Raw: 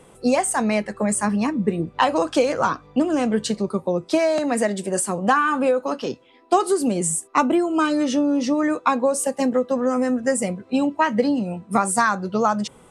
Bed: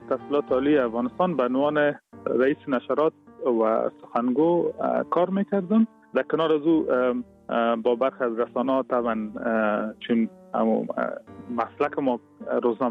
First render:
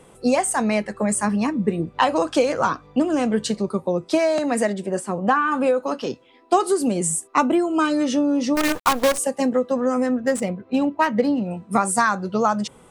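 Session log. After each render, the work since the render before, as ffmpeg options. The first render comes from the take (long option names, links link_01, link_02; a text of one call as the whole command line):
ffmpeg -i in.wav -filter_complex "[0:a]asettb=1/sr,asplit=3[link_01][link_02][link_03];[link_01]atrim=end=4.734[link_04];[link_02]atrim=start=4.73:end=5.52,asetpts=PTS-STARTPTS,afade=type=in:duration=0.004:curve=qsin,afade=type=out:start_time=0.786:duration=0.004:curve=qsin,lowpass=frequency=2200:poles=1[link_05];[link_03]atrim=start=5.516[link_06];[link_04][link_05]acrossfade=duration=0.004:curve1=hsin:curve2=qsin[link_07];[link_07][link_06]acrossfade=duration=0.004:curve1=qsin:curve2=hsin,asplit=3[link_08][link_09][link_10];[link_08]afade=type=out:start_time=8.55:duration=0.02[link_11];[link_09]acrusher=bits=4:dc=4:mix=0:aa=0.000001,afade=type=in:start_time=8.55:duration=0.02,afade=type=out:start_time=9.17:duration=0.02[link_12];[link_10]afade=type=in:start_time=9.17:duration=0.02[link_13];[link_11][link_12][link_13]amix=inputs=3:normalize=0,asettb=1/sr,asplit=3[link_14][link_15][link_16];[link_14]atrim=end=10.064[link_17];[link_15]atrim=start=10.06:end=11.51,asetpts=PTS-STARTPTS,afade=type=in:duration=0.004:curve=qsin,afade=type=out:start_time=1.446:duration=0.004:curve=qsin,adynamicsmooth=sensitivity=3.5:basefreq=3000[link_18];[link_16]atrim=start=11.506[link_19];[link_17][link_18]acrossfade=duration=0.004:curve1=hsin:curve2=qsin[link_20];[link_20][link_19]acrossfade=duration=0.004:curve1=qsin:curve2=hsin" out.wav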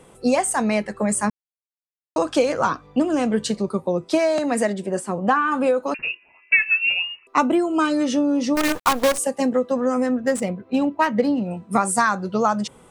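ffmpeg -i in.wav -filter_complex "[0:a]asettb=1/sr,asplit=3[link_01][link_02][link_03];[link_01]atrim=end=5.944[link_04];[link_02]atrim=start=5.94:end=7.27,asetpts=PTS-STARTPTS,afade=type=in:duration=0.004:curve=qsin,afade=type=out:start_time=1.326:duration=0.004:curve=qsin,lowpass=frequency=2600:width_type=q:width=0.5098,lowpass=frequency=2600:width_type=q:width=0.6013,lowpass=frequency=2600:width_type=q:width=0.9,lowpass=frequency=2600:width_type=q:width=2.563,afreqshift=-3000[link_05];[link_03]atrim=start=7.266[link_06];[link_04][link_05]acrossfade=duration=0.004:curve1=hsin:curve2=qsin[link_07];[link_07][link_06]acrossfade=duration=0.004:curve1=qsin:curve2=hsin,asplit=3[link_08][link_09][link_10];[link_08]atrim=end=1.3,asetpts=PTS-STARTPTS,afade=type=out:start_time=1.296:duration=0.004:curve=hsin[link_11];[link_09]atrim=start=1.3:end=2.16,asetpts=PTS-STARTPTS,volume=0[link_12];[link_10]atrim=start=2.16,asetpts=PTS-STARTPTS,afade=type=in:duration=0.004:curve=hsin[link_13];[link_11][link_12][link_13]concat=n=3:v=0:a=1" out.wav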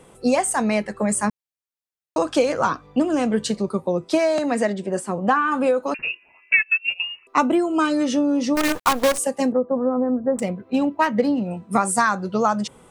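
ffmpeg -i in.wav -filter_complex "[0:a]asettb=1/sr,asplit=3[link_01][link_02][link_03];[link_01]atrim=end=4.524[link_04];[link_02]atrim=start=4.52:end=4.92,asetpts=PTS-STARTPTS,afade=type=in:duration=0.004:curve=qsin,afade=type=out:start_time=0.396:duration=0.004:curve=qsin,lowpass=7000[link_05];[link_03]atrim=start=4.916[link_06];[link_04][link_05]acrossfade=duration=0.004:curve1=hsin:curve2=qsin[link_07];[link_07][link_06]acrossfade=duration=0.004:curve1=qsin:curve2=hsin,asettb=1/sr,asplit=3[link_08][link_09][link_10];[link_08]atrim=end=6.534[link_11];[link_09]atrim=start=6.53:end=7,asetpts=PTS-STARTPTS,afade=type=in:duration=0.004:curve=qsin,afade=type=out:start_time=0.466:duration=0.004:curve=qsin,agate=range=-20dB:threshold=-20dB:ratio=16:release=100:detection=peak[link_12];[link_10]atrim=start=6.996[link_13];[link_11][link_12]acrossfade=duration=0.004:curve1=hsin:curve2=qsin[link_14];[link_14][link_13]acrossfade=duration=0.004:curve1=qsin:curve2=hsin,asettb=1/sr,asplit=3[link_15][link_16][link_17];[link_15]atrim=end=9.524[link_18];[link_16]atrim=start=9.52:end=10.39,asetpts=PTS-STARTPTS,afade=type=in:duration=0.004:curve=qsin,afade=type=out:start_time=0.866:duration=0.004:curve=qsin,lowpass=frequency=1100:width=0.5412,lowpass=frequency=1100:width=1.3066[link_19];[link_17]atrim=start=10.386[link_20];[link_18][link_19]acrossfade=duration=0.004:curve1=hsin:curve2=qsin[link_21];[link_21][link_20]acrossfade=duration=0.004:curve1=qsin:curve2=hsin" out.wav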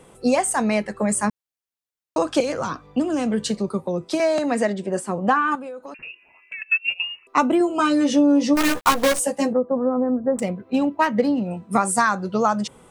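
ffmpeg -i in.wav -filter_complex "[0:a]asettb=1/sr,asplit=3[link_01][link_02][link_03];[link_01]atrim=end=2.404[link_04];[link_02]atrim=start=2.4:end=4.2,asetpts=PTS-STARTPTS,afade=type=in:duration=0.004:curve=qsin,afade=type=out:start_time=1.796:duration=0.004:curve=qsin,acrossover=split=290|3000[link_05][link_06][link_07];[link_06]acompressor=threshold=-23dB:ratio=6:attack=3.2:release=140:knee=2.83:detection=peak[link_08];[link_05][link_08][link_07]amix=inputs=3:normalize=0[link_09];[link_03]atrim=start=4.196[link_10];[link_04][link_09]acrossfade=duration=0.004:curve1=hsin:curve2=qsin[link_11];[link_11][link_10]acrossfade=duration=0.004:curve1=qsin:curve2=hsin,asettb=1/sr,asplit=3[link_12][link_13][link_14];[link_12]atrim=end=5.554[link_15];[link_13]atrim=start=5.55:end=6.62,asetpts=PTS-STARTPTS,afade=type=in:duration=0.004:curve=qsin,afade=type=out:start_time=1.066:duration=0.004:curve=qsin,acompressor=threshold=-37dB:ratio=3:attack=3.2:release=140:knee=1:detection=peak[link_16];[link_14]atrim=start=6.616[link_17];[link_15][link_16]acrossfade=duration=0.004:curve1=hsin:curve2=qsin[link_18];[link_18][link_17]acrossfade=duration=0.004:curve1=qsin:curve2=hsin,asettb=1/sr,asplit=3[link_19][link_20][link_21];[link_19]atrim=end=7.594[link_22];[link_20]atrim=start=7.59:end=9.54,asetpts=PTS-STARTPTS,afade=type=in:duration=0.004:curve=qsin,afade=type=out:start_time=1.946:duration=0.004:curve=qsin,asplit=2[link_23][link_24];[link_24]adelay=14,volume=-4dB[link_25];[link_23][link_25]amix=inputs=2:normalize=0,atrim=end_sample=85995[link_26];[link_21]atrim=start=9.536[link_27];[link_22][link_26]acrossfade=duration=0.004:curve1=hsin:curve2=qsin[link_28];[link_28][link_27]acrossfade=duration=0.004:curve1=qsin:curve2=hsin" out.wav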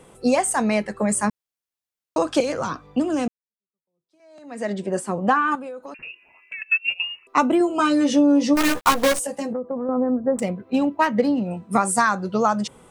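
ffmpeg -i in.wav -filter_complex "[0:a]asettb=1/sr,asplit=3[link_01][link_02][link_03];[link_01]atrim=end=9.184[link_04];[link_02]atrim=start=9.18:end=9.89,asetpts=PTS-STARTPTS,afade=type=in:duration=0.004:curve=qsin,afade=type=out:start_time=0.706:duration=0.004:curve=qsin,acompressor=threshold=-23dB:ratio=6:attack=3.2:release=140:knee=1:detection=peak[link_05];[link_03]atrim=start=9.886[link_06];[link_04][link_05]acrossfade=duration=0.004:curve1=hsin:curve2=qsin[link_07];[link_07][link_06]acrossfade=duration=0.004:curve1=qsin:curve2=hsin,asplit=2[link_08][link_09];[link_08]atrim=end=3.28,asetpts=PTS-STARTPTS,afade=type=out:start_time=3.276:duration=0.004:curve=hsin[link_10];[link_09]atrim=start=3.28,asetpts=PTS-STARTPTS,afade=type=in:duration=1.45:curve=exp[link_11];[link_10][link_11]concat=n=2:v=0:a=1" out.wav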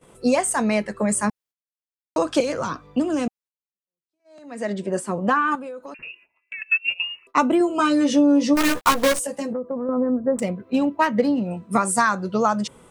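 ffmpeg -i in.wav -af "bandreject=frequency=780:width=12,agate=range=-19dB:threshold=-50dB:ratio=16:detection=peak" out.wav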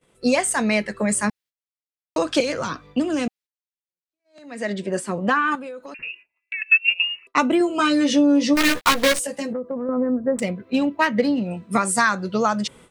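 ffmpeg -i in.wav -af "agate=range=-11dB:threshold=-47dB:ratio=16:detection=peak,equalizer=frequency=1000:width_type=o:width=1:gain=-3,equalizer=frequency=2000:width_type=o:width=1:gain=5,equalizer=frequency=4000:width_type=o:width=1:gain=5" out.wav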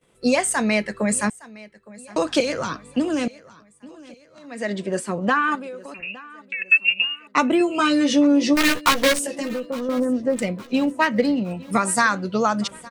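ffmpeg -i in.wav -af "aecho=1:1:863|1726|2589:0.0891|0.0419|0.0197" out.wav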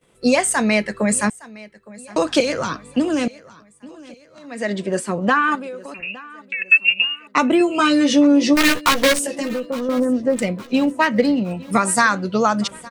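ffmpeg -i in.wav -af "volume=3dB,alimiter=limit=-3dB:level=0:latency=1" out.wav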